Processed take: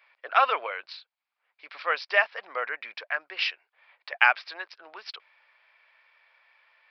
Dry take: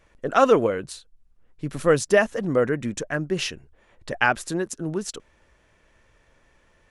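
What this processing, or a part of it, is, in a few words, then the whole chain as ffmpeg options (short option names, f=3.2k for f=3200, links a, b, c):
musical greeting card: -filter_complex "[0:a]aresample=11025,aresample=44100,highpass=f=780:w=0.5412,highpass=f=780:w=1.3066,equalizer=f=2.3k:t=o:w=0.28:g=9,asettb=1/sr,asplit=3[a][b][c];[a]atrim=end=3.394[d];[b]atrim=start=3.39:end=4.74,asetpts=PTS-STARTPTS,afade=t=in:d=0.004:c=qsin,afade=t=out:st=1.346:d=0.004:c=qsin,highpass=290[e];[c]atrim=start=4.736[f];[d][e]acrossfade=d=0.004:c1=hsin:c2=qsin[g];[g][f]acrossfade=d=0.004:c1=qsin:c2=hsin"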